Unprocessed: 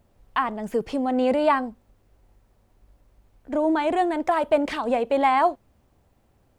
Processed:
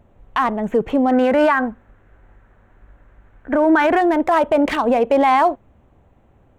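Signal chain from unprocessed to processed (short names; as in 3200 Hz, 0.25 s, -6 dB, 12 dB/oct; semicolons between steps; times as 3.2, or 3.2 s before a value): Wiener smoothing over 9 samples; 1.11–4.01 bell 1600 Hz +12.5 dB 0.8 oct; maximiser +15.5 dB; gain -6.5 dB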